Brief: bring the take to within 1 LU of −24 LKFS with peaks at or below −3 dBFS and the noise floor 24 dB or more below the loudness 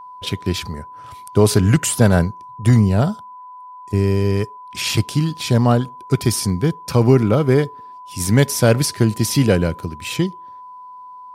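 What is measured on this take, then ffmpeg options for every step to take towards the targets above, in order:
interfering tone 1,000 Hz; level of the tone −35 dBFS; integrated loudness −18.0 LKFS; sample peak −1.5 dBFS; target loudness −24.0 LKFS
→ -af "bandreject=frequency=1000:width=30"
-af "volume=-6dB"

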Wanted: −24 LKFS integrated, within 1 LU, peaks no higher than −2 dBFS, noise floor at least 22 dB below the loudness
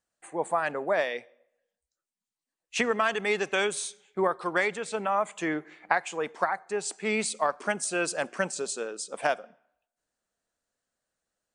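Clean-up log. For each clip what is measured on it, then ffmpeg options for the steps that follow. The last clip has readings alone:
integrated loudness −29.5 LKFS; sample peak −8.0 dBFS; target loudness −24.0 LKFS
→ -af "volume=5.5dB"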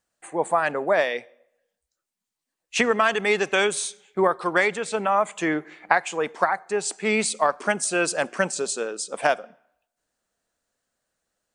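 integrated loudness −24.0 LKFS; sample peak −2.5 dBFS; background noise floor −85 dBFS

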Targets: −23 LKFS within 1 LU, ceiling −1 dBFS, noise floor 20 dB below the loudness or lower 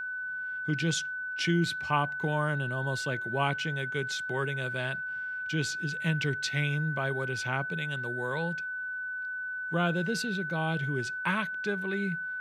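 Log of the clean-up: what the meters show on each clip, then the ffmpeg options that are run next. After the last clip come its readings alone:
interfering tone 1,500 Hz; level of the tone −33 dBFS; integrated loudness −31.0 LKFS; sample peak −13.0 dBFS; target loudness −23.0 LKFS
→ -af "bandreject=frequency=1500:width=30"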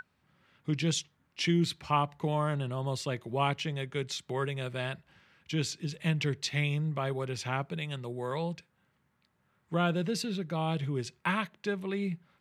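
interfering tone none found; integrated loudness −32.5 LKFS; sample peak −13.5 dBFS; target loudness −23.0 LKFS
→ -af "volume=9.5dB"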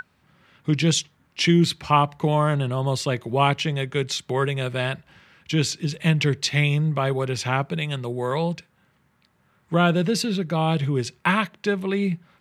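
integrated loudness −23.0 LKFS; sample peak −4.0 dBFS; background noise floor −65 dBFS

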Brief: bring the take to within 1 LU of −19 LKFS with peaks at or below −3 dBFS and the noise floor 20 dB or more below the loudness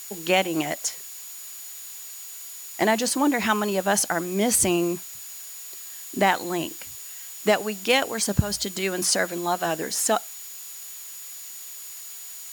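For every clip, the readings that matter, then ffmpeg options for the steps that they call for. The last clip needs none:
interfering tone 6,900 Hz; level of the tone −42 dBFS; background noise floor −39 dBFS; target noise floor −44 dBFS; integrated loudness −24.0 LKFS; sample peak −5.5 dBFS; target loudness −19.0 LKFS
→ -af "bandreject=frequency=6900:width=30"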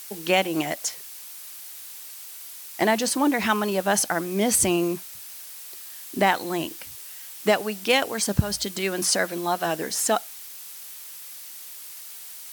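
interfering tone none found; background noise floor −41 dBFS; target noise floor −44 dBFS
→ -af "afftdn=noise_reduction=6:noise_floor=-41"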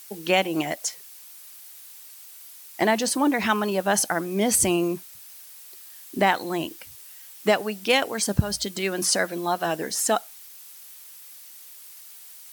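background noise floor −45 dBFS; integrated loudness −24.0 LKFS; sample peak −5.5 dBFS; target loudness −19.0 LKFS
→ -af "volume=5dB,alimiter=limit=-3dB:level=0:latency=1"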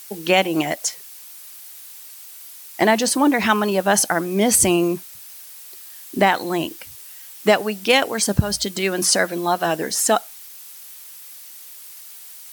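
integrated loudness −19.0 LKFS; sample peak −3.0 dBFS; background noise floor −40 dBFS

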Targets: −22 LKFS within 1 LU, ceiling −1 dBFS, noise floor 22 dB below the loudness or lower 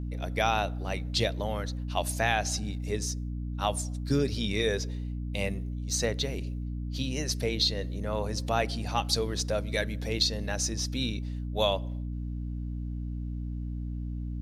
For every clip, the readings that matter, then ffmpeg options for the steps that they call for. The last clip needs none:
mains hum 60 Hz; hum harmonics up to 300 Hz; level of the hum −32 dBFS; integrated loudness −31.0 LKFS; sample peak −11.5 dBFS; target loudness −22.0 LKFS
→ -af "bandreject=frequency=60:width_type=h:width=4,bandreject=frequency=120:width_type=h:width=4,bandreject=frequency=180:width_type=h:width=4,bandreject=frequency=240:width_type=h:width=4,bandreject=frequency=300:width_type=h:width=4"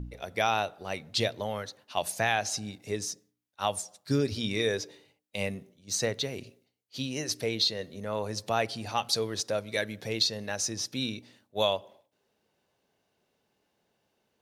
mains hum none found; integrated loudness −31.0 LKFS; sample peak −12.5 dBFS; target loudness −22.0 LKFS
→ -af "volume=9dB"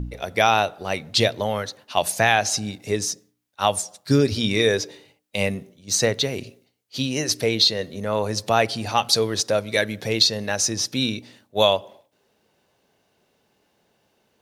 integrated loudness −22.0 LKFS; sample peak −3.5 dBFS; background noise floor −68 dBFS

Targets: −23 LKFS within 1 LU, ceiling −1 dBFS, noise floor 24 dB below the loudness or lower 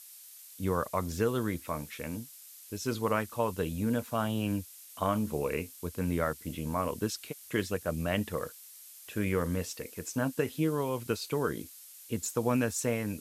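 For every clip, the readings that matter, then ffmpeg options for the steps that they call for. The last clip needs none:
background noise floor −51 dBFS; target noise floor −57 dBFS; integrated loudness −33.0 LKFS; sample peak −15.0 dBFS; target loudness −23.0 LKFS
→ -af "afftdn=noise_reduction=6:noise_floor=-51"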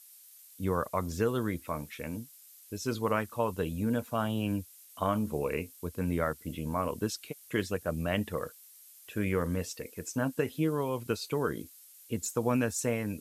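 background noise floor −55 dBFS; target noise floor −57 dBFS
→ -af "afftdn=noise_reduction=6:noise_floor=-55"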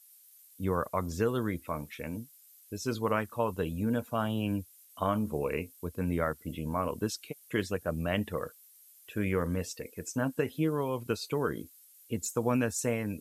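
background noise floor −58 dBFS; integrated loudness −33.0 LKFS; sample peak −15.0 dBFS; target loudness −23.0 LKFS
→ -af "volume=10dB"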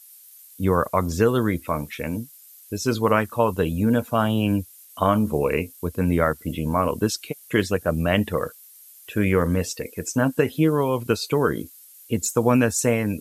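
integrated loudness −23.0 LKFS; sample peak −5.0 dBFS; background noise floor −48 dBFS

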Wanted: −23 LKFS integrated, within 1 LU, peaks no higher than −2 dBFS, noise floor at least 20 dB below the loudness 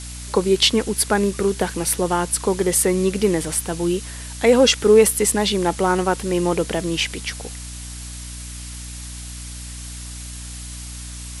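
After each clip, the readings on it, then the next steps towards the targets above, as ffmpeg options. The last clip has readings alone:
mains hum 60 Hz; hum harmonics up to 300 Hz; level of the hum −33 dBFS; background noise floor −34 dBFS; target noise floor −39 dBFS; integrated loudness −19.0 LKFS; sample peak −3.0 dBFS; target loudness −23.0 LKFS
→ -af "bandreject=frequency=60:width_type=h:width=4,bandreject=frequency=120:width_type=h:width=4,bandreject=frequency=180:width_type=h:width=4,bandreject=frequency=240:width_type=h:width=4,bandreject=frequency=300:width_type=h:width=4"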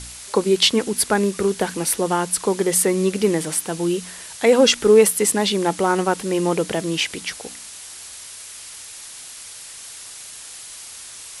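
mains hum none found; background noise floor −38 dBFS; target noise floor −39 dBFS
→ -af "afftdn=noise_reduction=6:noise_floor=-38"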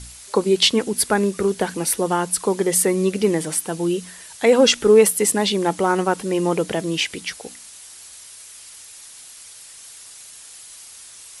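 background noise floor −42 dBFS; integrated loudness −19.0 LKFS; sample peak −3.0 dBFS; target loudness −23.0 LKFS
→ -af "volume=-4dB"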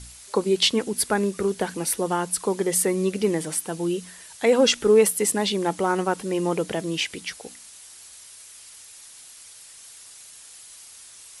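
integrated loudness −23.0 LKFS; sample peak −7.0 dBFS; background noise floor −46 dBFS

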